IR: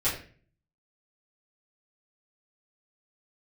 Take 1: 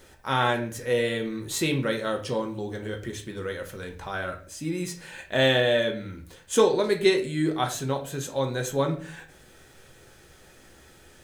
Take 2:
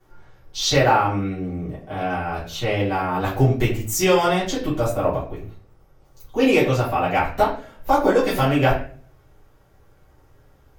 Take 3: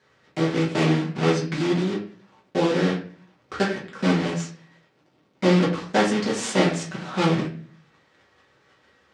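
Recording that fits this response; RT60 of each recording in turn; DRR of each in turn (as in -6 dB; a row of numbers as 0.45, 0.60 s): 2; 0.40, 0.40, 0.40 s; 3.5, -12.0, -5.0 dB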